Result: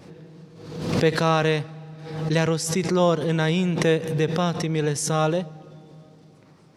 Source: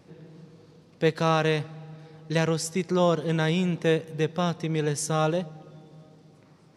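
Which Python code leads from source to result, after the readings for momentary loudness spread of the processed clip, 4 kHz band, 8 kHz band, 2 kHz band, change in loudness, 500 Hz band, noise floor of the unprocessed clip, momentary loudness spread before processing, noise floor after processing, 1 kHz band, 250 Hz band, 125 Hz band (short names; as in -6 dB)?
12 LU, +4.0 dB, +4.5 dB, +3.5 dB, +3.0 dB, +3.0 dB, -56 dBFS, 7 LU, -52 dBFS, +3.0 dB, +3.5 dB, +3.5 dB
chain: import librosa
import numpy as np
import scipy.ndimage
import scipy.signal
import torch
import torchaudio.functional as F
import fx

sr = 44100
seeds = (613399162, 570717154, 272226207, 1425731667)

y = fx.pre_swell(x, sr, db_per_s=59.0)
y = F.gain(torch.from_numpy(y), 2.5).numpy()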